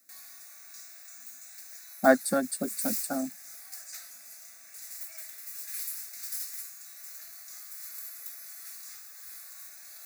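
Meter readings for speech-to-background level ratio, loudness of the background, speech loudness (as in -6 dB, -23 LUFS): 11.0 dB, -39.0 LUFS, -28.0 LUFS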